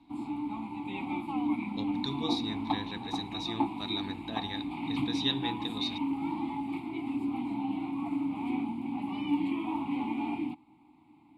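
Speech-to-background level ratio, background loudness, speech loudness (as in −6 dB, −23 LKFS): −2.5 dB, −34.5 LKFS, −37.0 LKFS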